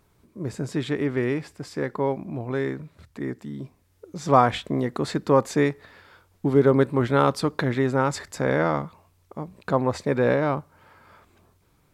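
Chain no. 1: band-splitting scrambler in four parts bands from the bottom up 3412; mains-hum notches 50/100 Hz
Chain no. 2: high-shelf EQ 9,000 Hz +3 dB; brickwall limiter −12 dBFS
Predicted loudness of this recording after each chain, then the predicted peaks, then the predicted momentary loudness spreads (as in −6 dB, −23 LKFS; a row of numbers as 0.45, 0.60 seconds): −20.5, −26.5 LKFS; −3.5, −12.0 dBFS; 17, 15 LU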